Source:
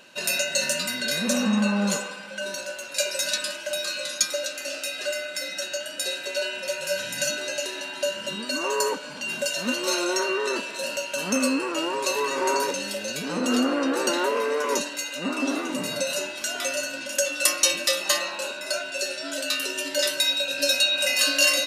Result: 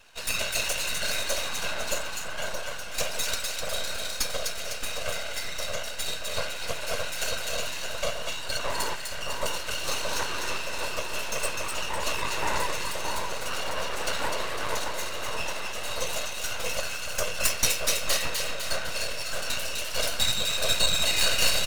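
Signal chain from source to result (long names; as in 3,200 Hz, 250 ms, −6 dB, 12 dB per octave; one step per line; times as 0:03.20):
high-pass filter 570 Hz 24 dB per octave
comb filter 5.3 ms
random phases in short frames
half-wave rectification
echo with a time of its own for lows and highs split 1,700 Hz, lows 621 ms, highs 252 ms, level −4 dB
level −2 dB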